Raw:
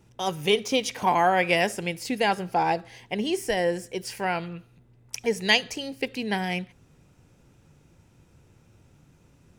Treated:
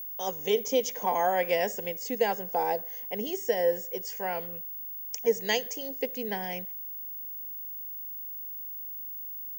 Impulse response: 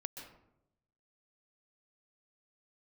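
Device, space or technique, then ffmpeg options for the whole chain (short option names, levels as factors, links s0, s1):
old television with a line whistle: -af "highpass=f=210:w=0.5412,highpass=f=210:w=1.3066,equalizer=f=340:t=q:w=4:g=-7,equalizer=f=480:t=q:w=4:g=9,equalizer=f=1300:t=q:w=4:g=-8,equalizer=f=2500:t=q:w=4:g=-8,equalizer=f=4000:t=q:w=4:g=-8,equalizer=f=6600:t=q:w=4:g=9,lowpass=f=7400:w=0.5412,lowpass=f=7400:w=1.3066,aeval=exprs='val(0)+0.0282*sin(2*PI*15625*n/s)':c=same,volume=0.562"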